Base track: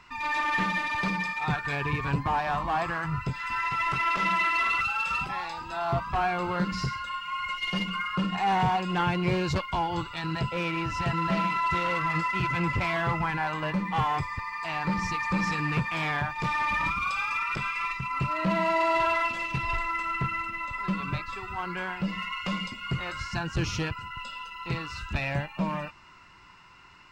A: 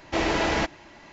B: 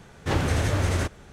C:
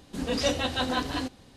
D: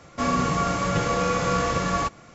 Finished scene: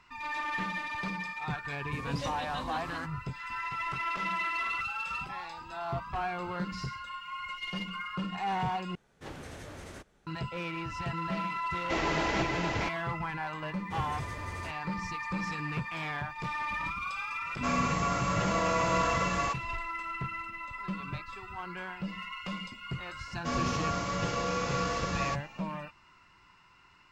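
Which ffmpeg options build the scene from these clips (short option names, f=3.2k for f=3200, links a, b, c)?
-filter_complex "[2:a]asplit=2[a][b];[4:a]asplit=2[c][d];[0:a]volume=-7dB[e];[a]equalizer=f=90:w=1.8:g=-10.5[f];[1:a]aecho=1:1:464:0.708[g];[c]acrossover=split=340[h][i];[i]adelay=40[j];[h][j]amix=inputs=2:normalize=0[k];[d]lowpass=f=5.6k:t=q:w=1.5[l];[e]asplit=2[m][n];[m]atrim=end=8.954[o];[f]atrim=end=1.32,asetpts=PTS-STARTPTS,volume=-17.5dB[p];[n]atrim=start=10.266[q];[3:a]atrim=end=1.56,asetpts=PTS-STARTPTS,volume=-12.5dB,afade=t=in:d=0.004:c=hsin,afade=t=out:st=1.556:d=0.004:c=hsin,adelay=1780[r];[g]atrim=end=1.12,asetpts=PTS-STARTPTS,volume=-7dB,afade=t=in:d=0.004:c=hsin,afade=t=out:st=1.116:d=0.004:c=hsin,adelay=11770[s];[b]atrim=end=1.32,asetpts=PTS-STARTPTS,volume=-17dB,afade=t=in:d=0.004:c=hsin,afade=t=out:st=1.316:d=0.004:c=hsin,adelay=601524S[t];[k]atrim=end=2.34,asetpts=PTS-STARTPTS,volume=-6dB,afade=t=in:d=0.004:c=hsin,afade=t=out:st=2.336:d=0.004:c=hsin,adelay=17410[u];[l]atrim=end=2.34,asetpts=PTS-STARTPTS,volume=-8.5dB,afade=t=in:d=0.004:c=hsin,afade=t=out:st=2.336:d=0.004:c=hsin,adelay=23270[v];[o][p]acrossfade=d=0.004:c1=hsin:c2=hsin[w];[w][q]acrossfade=d=0.004:c1=hsin:c2=hsin[x];[x][r][s][t][u][v]amix=inputs=6:normalize=0"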